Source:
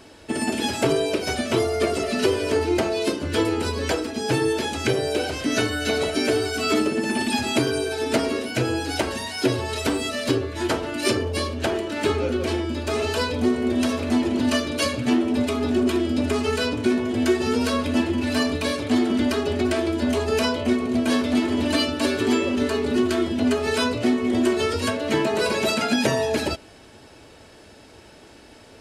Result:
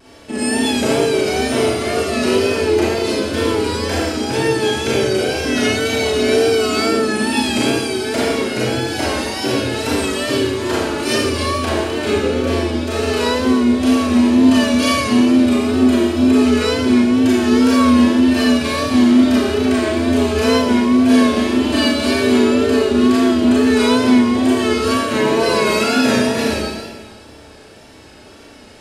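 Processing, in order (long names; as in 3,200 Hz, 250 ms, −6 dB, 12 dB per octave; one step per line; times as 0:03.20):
four-comb reverb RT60 1.5 s, combs from 28 ms, DRR −8 dB
tape wow and flutter 47 cents
level −2.5 dB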